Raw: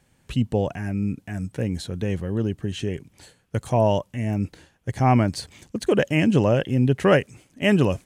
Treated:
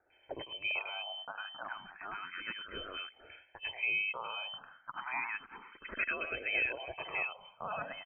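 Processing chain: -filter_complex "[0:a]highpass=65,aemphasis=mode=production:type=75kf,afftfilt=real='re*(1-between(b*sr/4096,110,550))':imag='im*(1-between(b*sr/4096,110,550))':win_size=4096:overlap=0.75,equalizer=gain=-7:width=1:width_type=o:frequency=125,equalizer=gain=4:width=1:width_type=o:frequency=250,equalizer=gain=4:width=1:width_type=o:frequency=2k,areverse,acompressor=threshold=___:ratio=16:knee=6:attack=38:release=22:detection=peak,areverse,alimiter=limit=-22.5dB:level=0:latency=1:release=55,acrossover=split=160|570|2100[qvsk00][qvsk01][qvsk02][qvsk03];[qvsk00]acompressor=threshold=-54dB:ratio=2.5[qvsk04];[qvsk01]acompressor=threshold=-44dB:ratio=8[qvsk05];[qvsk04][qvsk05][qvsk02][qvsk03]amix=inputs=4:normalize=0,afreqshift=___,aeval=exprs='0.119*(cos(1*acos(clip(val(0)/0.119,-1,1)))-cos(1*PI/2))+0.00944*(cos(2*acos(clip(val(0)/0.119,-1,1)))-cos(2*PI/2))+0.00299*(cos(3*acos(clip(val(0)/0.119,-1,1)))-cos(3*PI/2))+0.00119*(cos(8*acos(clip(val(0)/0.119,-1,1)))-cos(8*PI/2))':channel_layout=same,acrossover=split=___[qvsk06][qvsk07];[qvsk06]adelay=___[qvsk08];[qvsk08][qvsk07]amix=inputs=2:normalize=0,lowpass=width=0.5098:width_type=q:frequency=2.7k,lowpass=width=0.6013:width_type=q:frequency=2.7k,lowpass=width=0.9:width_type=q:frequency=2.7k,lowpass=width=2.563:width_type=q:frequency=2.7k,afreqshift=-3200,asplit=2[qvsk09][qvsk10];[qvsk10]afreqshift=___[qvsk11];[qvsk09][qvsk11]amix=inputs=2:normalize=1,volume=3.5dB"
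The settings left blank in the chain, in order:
-33dB, 27, 1900, 100, 0.31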